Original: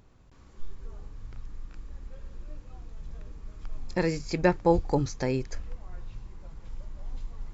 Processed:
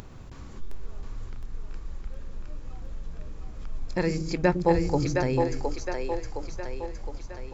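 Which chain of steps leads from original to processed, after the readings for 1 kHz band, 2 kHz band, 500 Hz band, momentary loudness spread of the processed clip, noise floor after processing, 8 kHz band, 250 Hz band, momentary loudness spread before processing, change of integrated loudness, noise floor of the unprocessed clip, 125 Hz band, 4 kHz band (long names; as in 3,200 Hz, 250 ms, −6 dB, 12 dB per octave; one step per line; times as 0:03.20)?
+2.0 dB, +2.0 dB, +2.0 dB, 20 LU, −42 dBFS, can't be measured, +2.0 dB, 22 LU, 0.0 dB, −54 dBFS, +2.5 dB, +2.5 dB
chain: upward compression, threshold −32 dBFS
echo with a time of its own for lows and highs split 330 Hz, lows 105 ms, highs 714 ms, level −3.5 dB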